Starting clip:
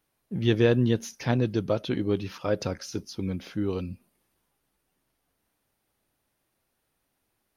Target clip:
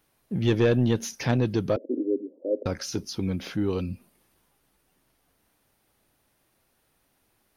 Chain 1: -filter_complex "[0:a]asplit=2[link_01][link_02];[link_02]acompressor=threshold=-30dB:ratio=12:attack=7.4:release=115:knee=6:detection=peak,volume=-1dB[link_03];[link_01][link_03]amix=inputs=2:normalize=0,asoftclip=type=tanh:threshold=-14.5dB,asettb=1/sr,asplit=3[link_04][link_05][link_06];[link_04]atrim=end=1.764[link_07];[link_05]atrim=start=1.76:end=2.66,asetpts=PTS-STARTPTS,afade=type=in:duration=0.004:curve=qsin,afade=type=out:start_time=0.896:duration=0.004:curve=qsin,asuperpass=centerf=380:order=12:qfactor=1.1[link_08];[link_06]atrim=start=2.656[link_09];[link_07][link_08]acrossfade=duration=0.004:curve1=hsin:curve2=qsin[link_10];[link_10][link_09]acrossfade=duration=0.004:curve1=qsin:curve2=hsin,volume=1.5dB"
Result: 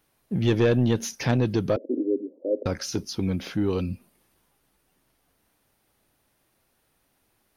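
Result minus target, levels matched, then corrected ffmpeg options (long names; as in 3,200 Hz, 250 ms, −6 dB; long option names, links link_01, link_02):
downward compressor: peak gain reduction −9.5 dB
-filter_complex "[0:a]asplit=2[link_01][link_02];[link_02]acompressor=threshold=-40.5dB:ratio=12:attack=7.4:release=115:knee=6:detection=peak,volume=-1dB[link_03];[link_01][link_03]amix=inputs=2:normalize=0,asoftclip=type=tanh:threshold=-14.5dB,asettb=1/sr,asplit=3[link_04][link_05][link_06];[link_04]atrim=end=1.764[link_07];[link_05]atrim=start=1.76:end=2.66,asetpts=PTS-STARTPTS,afade=type=in:duration=0.004:curve=qsin,afade=type=out:start_time=0.896:duration=0.004:curve=qsin,asuperpass=centerf=380:order=12:qfactor=1.1[link_08];[link_06]atrim=start=2.656[link_09];[link_07][link_08]acrossfade=duration=0.004:curve1=hsin:curve2=qsin[link_10];[link_10][link_09]acrossfade=duration=0.004:curve1=qsin:curve2=hsin,volume=1.5dB"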